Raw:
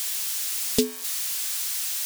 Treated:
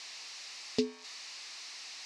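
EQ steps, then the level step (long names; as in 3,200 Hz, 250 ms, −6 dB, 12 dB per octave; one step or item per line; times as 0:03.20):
loudspeaker in its box 140–4,900 Hz, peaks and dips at 190 Hz −8 dB, 520 Hz −4 dB, 1,500 Hz −8 dB, 3,300 Hz −9 dB
−5.5 dB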